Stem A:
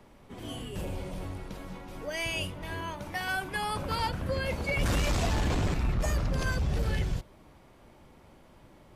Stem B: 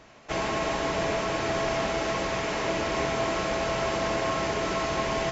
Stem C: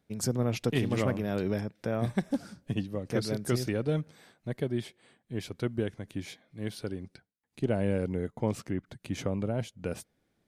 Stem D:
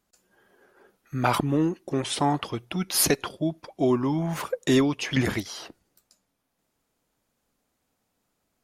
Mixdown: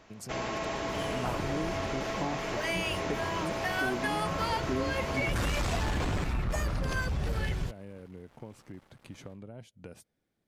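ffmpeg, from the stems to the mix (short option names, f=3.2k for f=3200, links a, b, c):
-filter_complex "[0:a]equalizer=f=1.5k:t=o:w=2:g=4,dynaudnorm=f=210:g=3:m=12dB,aeval=exprs='sgn(val(0))*max(abs(val(0))-0.00891,0)':c=same,adelay=500,volume=-11dB[a];[1:a]volume=-5dB[b];[2:a]acompressor=threshold=-36dB:ratio=4,volume=-6.5dB[c];[3:a]lowpass=1.3k,volume=-8.5dB[d];[a][b][c][d]amix=inputs=4:normalize=0,acompressor=threshold=-30dB:ratio=2"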